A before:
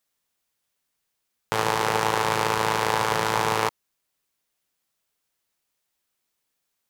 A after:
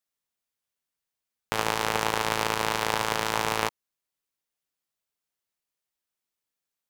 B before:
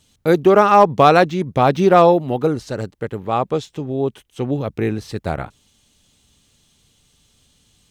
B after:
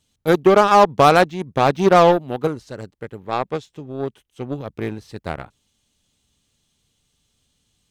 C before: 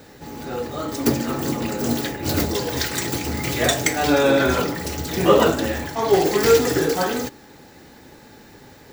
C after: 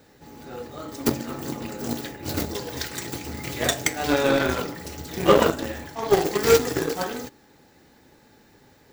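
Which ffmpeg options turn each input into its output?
ffmpeg -i in.wav -af "aeval=exprs='0.891*(cos(1*acos(clip(val(0)/0.891,-1,1)))-cos(1*PI/2))+0.0794*(cos(7*acos(clip(val(0)/0.891,-1,1)))-cos(7*PI/2))':channel_layout=same,volume=-1dB" out.wav

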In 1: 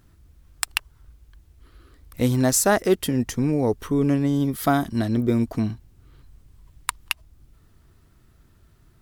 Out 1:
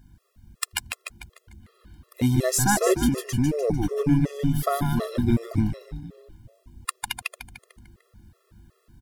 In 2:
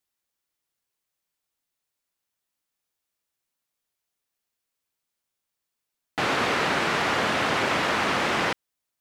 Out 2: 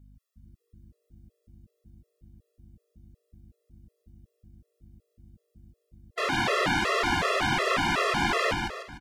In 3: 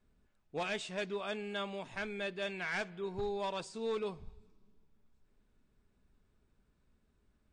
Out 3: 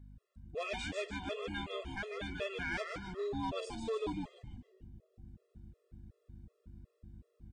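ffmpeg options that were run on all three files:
ffmpeg -i in.wav -filter_complex "[0:a]aeval=exprs='val(0)+0.00251*(sin(2*PI*50*n/s)+sin(2*PI*2*50*n/s)/2+sin(2*PI*3*50*n/s)/3+sin(2*PI*4*50*n/s)/4+sin(2*PI*5*50*n/s)/5)':channel_layout=same,asplit=7[link_01][link_02][link_03][link_04][link_05][link_06][link_07];[link_02]adelay=149,afreqshift=-130,volume=-3.5dB[link_08];[link_03]adelay=298,afreqshift=-260,volume=-10.4dB[link_09];[link_04]adelay=447,afreqshift=-390,volume=-17.4dB[link_10];[link_05]adelay=596,afreqshift=-520,volume=-24.3dB[link_11];[link_06]adelay=745,afreqshift=-650,volume=-31.2dB[link_12];[link_07]adelay=894,afreqshift=-780,volume=-38.2dB[link_13];[link_01][link_08][link_09][link_10][link_11][link_12][link_13]amix=inputs=7:normalize=0,afftfilt=real='re*gt(sin(2*PI*2.7*pts/sr)*(1-2*mod(floor(b*sr/1024/350),2)),0)':imag='im*gt(sin(2*PI*2.7*pts/sr)*(1-2*mod(floor(b*sr/1024/350),2)),0)':win_size=1024:overlap=0.75" out.wav

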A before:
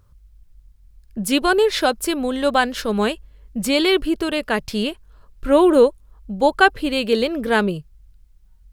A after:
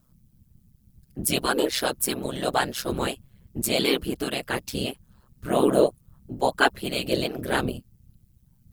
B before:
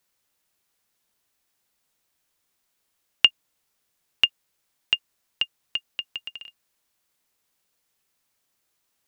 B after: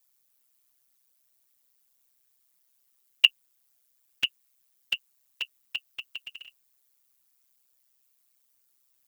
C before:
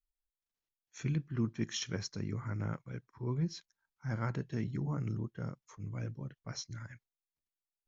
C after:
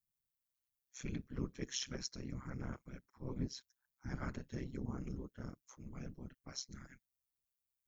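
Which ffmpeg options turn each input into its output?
ffmpeg -i in.wav -af "aemphasis=mode=production:type=50kf,afftfilt=real='hypot(re,im)*cos(2*PI*random(0))':imag='hypot(re,im)*sin(2*PI*random(1))':win_size=512:overlap=0.75,aeval=exprs='val(0)*sin(2*PI*65*n/s)':channel_layout=same,volume=1.5dB" out.wav

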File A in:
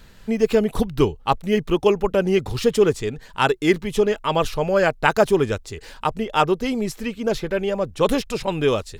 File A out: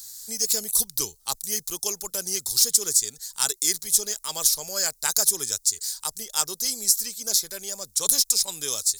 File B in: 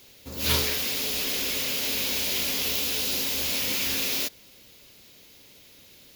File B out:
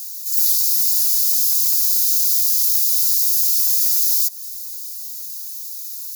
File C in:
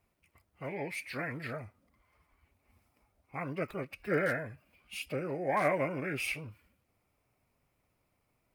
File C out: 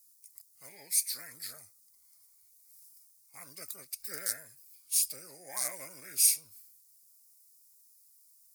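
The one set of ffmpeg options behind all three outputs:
ffmpeg -i in.wav -filter_complex "[0:a]aexciter=amount=13.4:drive=9.8:freq=4500,acrossover=split=150[link_01][link_02];[link_02]acompressor=threshold=-5dB:ratio=10[link_03];[link_01][link_03]amix=inputs=2:normalize=0,tiltshelf=frequency=970:gain=-7,volume=-15.5dB" out.wav

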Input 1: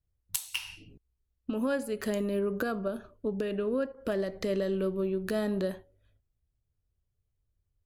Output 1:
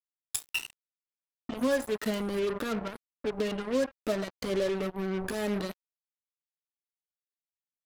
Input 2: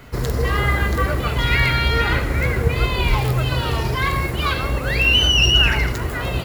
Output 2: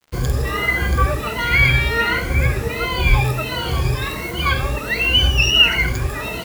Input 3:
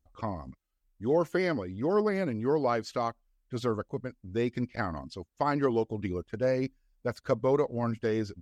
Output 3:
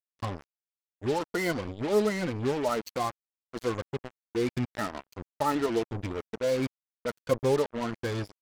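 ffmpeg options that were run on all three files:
ffmpeg -i in.wav -af "afftfilt=real='re*pow(10,17/40*sin(2*PI*(1.9*log(max(b,1)*sr/1024/100)/log(2)-(1.4)*(pts-256)/sr)))':imag='im*pow(10,17/40*sin(2*PI*(1.9*log(max(b,1)*sr/1024/100)/log(2)-(1.4)*(pts-256)/sr)))':win_size=1024:overlap=0.75,adynamicequalizer=threshold=0.0282:dfrequency=2400:dqfactor=4:tfrequency=2400:tqfactor=4:attack=5:release=100:ratio=0.375:range=2.5:mode=boostabove:tftype=bell,acrusher=bits=4:mix=0:aa=0.5,volume=-3.5dB" out.wav

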